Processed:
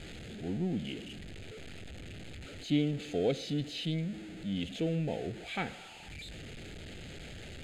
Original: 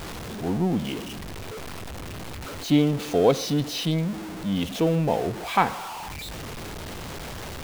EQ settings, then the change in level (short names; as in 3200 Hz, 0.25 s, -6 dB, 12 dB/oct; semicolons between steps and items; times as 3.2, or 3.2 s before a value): synth low-pass 6300 Hz, resonance Q 4.6; fixed phaser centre 2500 Hz, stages 4; -8.5 dB